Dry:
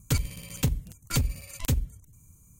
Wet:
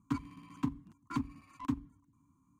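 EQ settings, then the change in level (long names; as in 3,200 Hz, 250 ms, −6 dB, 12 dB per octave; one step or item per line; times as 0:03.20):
pair of resonant band-passes 540 Hz, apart 1.9 octaves
+6.5 dB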